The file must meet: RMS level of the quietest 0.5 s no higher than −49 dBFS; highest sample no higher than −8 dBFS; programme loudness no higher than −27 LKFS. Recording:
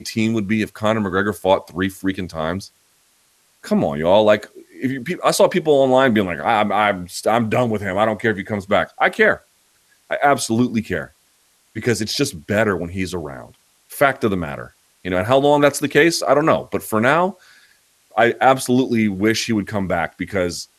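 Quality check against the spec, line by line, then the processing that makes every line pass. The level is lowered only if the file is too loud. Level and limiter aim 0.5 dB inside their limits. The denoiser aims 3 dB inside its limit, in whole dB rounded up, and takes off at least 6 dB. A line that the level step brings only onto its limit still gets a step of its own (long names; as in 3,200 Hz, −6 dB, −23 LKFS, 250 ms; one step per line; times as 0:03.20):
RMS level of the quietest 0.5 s −59 dBFS: in spec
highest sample −2.0 dBFS: out of spec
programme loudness −18.5 LKFS: out of spec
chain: level −9 dB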